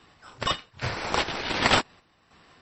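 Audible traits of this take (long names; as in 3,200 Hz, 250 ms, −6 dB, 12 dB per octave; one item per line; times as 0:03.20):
aliases and images of a low sample rate 6,600 Hz, jitter 0%
chopped level 1.3 Hz, depth 60%, duty 60%
MP3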